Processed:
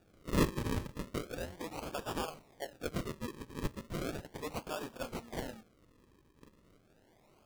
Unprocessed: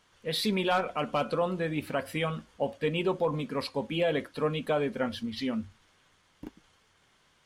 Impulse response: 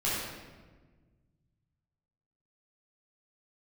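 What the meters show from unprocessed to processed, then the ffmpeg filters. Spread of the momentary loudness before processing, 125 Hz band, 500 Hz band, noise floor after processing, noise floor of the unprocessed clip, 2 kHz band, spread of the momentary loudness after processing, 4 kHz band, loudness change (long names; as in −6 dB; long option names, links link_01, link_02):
7 LU, −4.5 dB, −11.5 dB, −67 dBFS, −67 dBFS, −9.5 dB, 10 LU, −11.0 dB, −9.0 dB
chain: -af "aderivative,acrusher=samples=42:mix=1:aa=0.000001:lfo=1:lforange=42:lforate=0.36,volume=8dB"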